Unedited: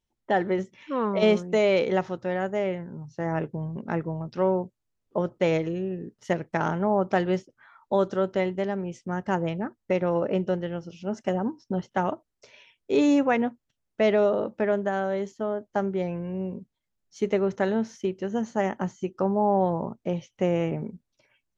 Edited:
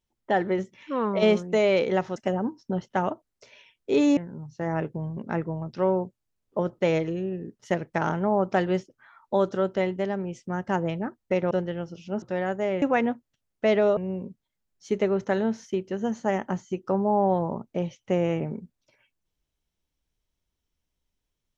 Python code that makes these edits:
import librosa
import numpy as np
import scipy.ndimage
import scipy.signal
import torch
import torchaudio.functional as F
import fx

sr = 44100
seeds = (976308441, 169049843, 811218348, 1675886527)

y = fx.edit(x, sr, fx.swap(start_s=2.16, length_s=0.6, other_s=11.17, other_length_s=2.01),
    fx.cut(start_s=10.1, length_s=0.36),
    fx.cut(start_s=14.33, length_s=1.95), tone=tone)